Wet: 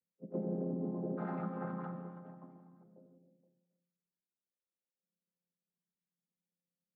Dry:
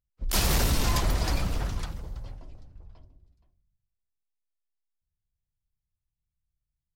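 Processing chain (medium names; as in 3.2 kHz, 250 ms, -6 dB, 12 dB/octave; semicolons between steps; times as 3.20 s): vocoder on a held chord minor triad, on F3; compression, threshold -33 dBFS, peak gain reduction 8.5 dB; four-pole ladder low-pass 570 Hz, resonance 50%, from 1.17 s 1.5 kHz, from 2.83 s 590 Hz; gated-style reverb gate 350 ms flat, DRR 7 dB; trim +6.5 dB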